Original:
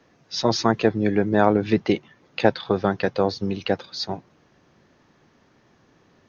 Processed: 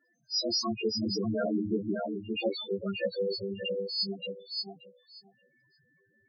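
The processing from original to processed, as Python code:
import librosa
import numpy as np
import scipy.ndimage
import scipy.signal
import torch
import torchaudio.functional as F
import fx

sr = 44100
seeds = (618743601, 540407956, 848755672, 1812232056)

y = fx.freq_snap(x, sr, grid_st=2)
y = fx.resample_bad(y, sr, factor=8, down='none', up='hold', at=(2.79, 3.31))
y = fx.echo_feedback(y, sr, ms=579, feedback_pct=15, wet_db=-4.0)
y = fx.spec_topn(y, sr, count=4)
y = y * librosa.db_to_amplitude(-6.5)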